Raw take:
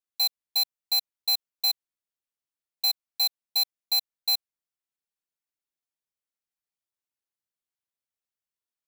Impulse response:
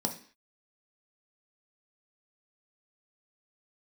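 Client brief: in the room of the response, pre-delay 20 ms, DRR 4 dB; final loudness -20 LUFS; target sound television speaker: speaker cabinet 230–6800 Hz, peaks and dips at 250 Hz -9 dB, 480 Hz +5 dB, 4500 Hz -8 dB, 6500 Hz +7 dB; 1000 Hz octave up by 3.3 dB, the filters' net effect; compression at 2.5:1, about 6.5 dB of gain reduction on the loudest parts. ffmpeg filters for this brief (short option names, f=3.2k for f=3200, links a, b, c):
-filter_complex "[0:a]equalizer=f=1k:t=o:g=4.5,acompressor=threshold=-32dB:ratio=2.5,asplit=2[a][b];[1:a]atrim=start_sample=2205,adelay=20[c];[b][c]afir=irnorm=-1:irlink=0,volume=-8.5dB[d];[a][d]amix=inputs=2:normalize=0,highpass=f=230:w=0.5412,highpass=f=230:w=1.3066,equalizer=f=250:t=q:w=4:g=-9,equalizer=f=480:t=q:w=4:g=5,equalizer=f=4.5k:t=q:w=4:g=-8,equalizer=f=6.5k:t=q:w=4:g=7,lowpass=f=6.8k:w=0.5412,lowpass=f=6.8k:w=1.3066,volume=13dB"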